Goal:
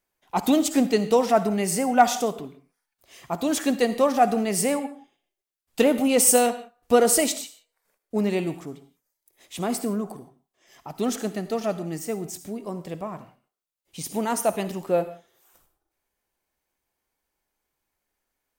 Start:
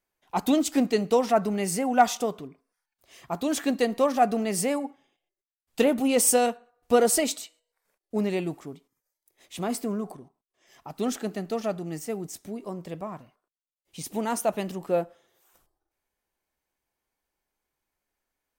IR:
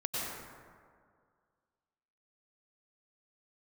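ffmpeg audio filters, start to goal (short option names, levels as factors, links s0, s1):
-filter_complex "[0:a]asplit=2[s0][s1];[s1]highshelf=f=5300:g=11.5[s2];[1:a]atrim=start_sample=2205,afade=t=out:st=0.38:d=0.01,atrim=end_sample=17199,asetrate=79380,aresample=44100[s3];[s2][s3]afir=irnorm=-1:irlink=0,volume=0.237[s4];[s0][s4]amix=inputs=2:normalize=0,volume=1.19"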